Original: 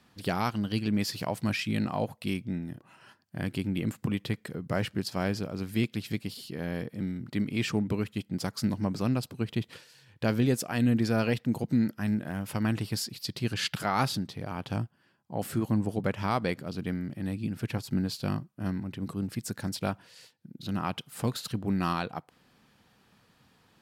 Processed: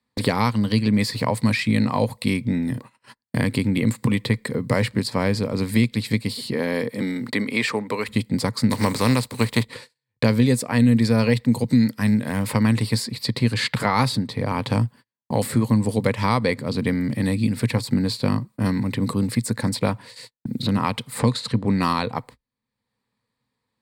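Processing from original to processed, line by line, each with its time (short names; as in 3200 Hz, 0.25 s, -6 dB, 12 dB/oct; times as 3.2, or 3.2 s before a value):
6.52–8.07 HPF 220 Hz -> 620 Hz
8.7–9.62 spectral contrast lowered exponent 0.59
21.19–21.81 LPF 7900 Hz
whole clip: gate -51 dBFS, range -45 dB; ripple EQ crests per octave 0.97, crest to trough 9 dB; three-band squash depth 70%; gain +7.5 dB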